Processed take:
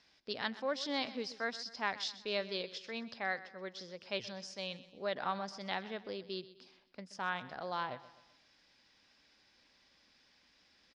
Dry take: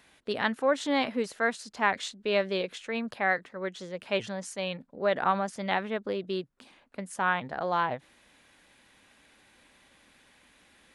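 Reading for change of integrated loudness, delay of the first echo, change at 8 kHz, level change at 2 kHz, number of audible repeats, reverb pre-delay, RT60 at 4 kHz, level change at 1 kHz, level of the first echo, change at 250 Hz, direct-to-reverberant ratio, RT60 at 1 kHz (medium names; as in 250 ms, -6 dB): -9.5 dB, 127 ms, -9.5 dB, -9.5 dB, 3, no reverb, no reverb, -10.5 dB, -16.5 dB, -11.0 dB, no reverb, no reverb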